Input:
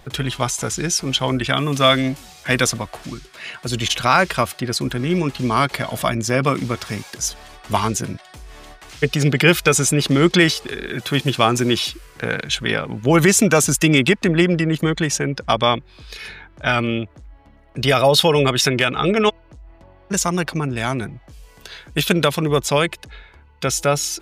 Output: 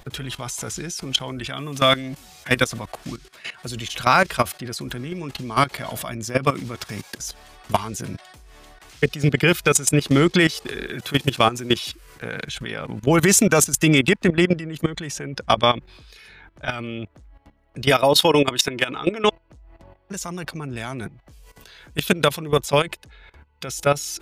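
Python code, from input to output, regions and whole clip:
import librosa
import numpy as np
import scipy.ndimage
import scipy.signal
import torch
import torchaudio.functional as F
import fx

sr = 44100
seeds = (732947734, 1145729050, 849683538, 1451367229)

y = fx.chain(x, sr, fx.low_shelf(hz=200.0, db=-7.5),
    fx.small_body(hz=(300.0, 960.0), ring_ms=65, db=9), at=(17.9, 19.24))
y = fx.high_shelf(y, sr, hz=11000.0, db=5.5)
y = fx.level_steps(y, sr, step_db=16)
y = y * 10.0 ** (1.5 / 20.0)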